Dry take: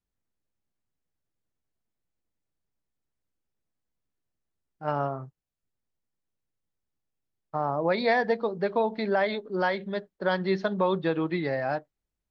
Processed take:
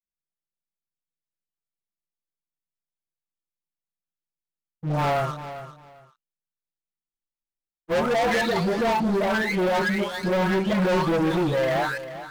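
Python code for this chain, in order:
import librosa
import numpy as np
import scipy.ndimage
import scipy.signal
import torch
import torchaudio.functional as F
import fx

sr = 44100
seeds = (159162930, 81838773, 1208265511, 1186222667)

p1 = fx.spec_delay(x, sr, highs='late', ms=953)
p2 = fx.high_shelf(p1, sr, hz=2700.0, db=-10.0)
p3 = fx.leveller(p2, sr, passes=5)
p4 = p3 + fx.echo_feedback(p3, sr, ms=397, feedback_pct=21, wet_db=-13.0, dry=0)
p5 = fx.spec_freeze(p4, sr, seeds[0], at_s=7.01, hold_s=0.9)
y = p5 * librosa.db_to_amplitude(-3.0)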